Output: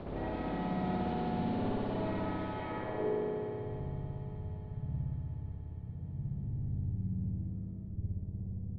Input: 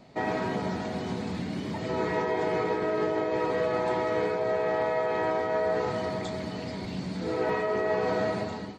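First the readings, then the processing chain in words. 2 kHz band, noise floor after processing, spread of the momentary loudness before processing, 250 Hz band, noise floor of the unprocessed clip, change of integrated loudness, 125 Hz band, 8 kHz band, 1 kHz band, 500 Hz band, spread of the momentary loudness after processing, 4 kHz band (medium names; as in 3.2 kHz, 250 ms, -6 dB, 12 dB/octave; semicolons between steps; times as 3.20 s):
-15.5 dB, -44 dBFS, 6 LU, -4.5 dB, -36 dBFS, -8.5 dB, +2.0 dB, no reading, -10.5 dB, -13.0 dB, 8 LU, -13.5 dB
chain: wind noise 580 Hz -33 dBFS; tilt shelf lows +6 dB, about 900 Hz; compression 6:1, threshold -35 dBFS, peak gain reduction 22 dB; low-pass sweep 3.6 kHz -> 110 Hz, 2.51–3.35 s; thinning echo 387 ms, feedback 78%, high-pass 220 Hz, level -19 dB; spring tank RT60 3.3 s, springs 59 ms, chirp 40 ms, DRR -9 dB; trim -6.5 dB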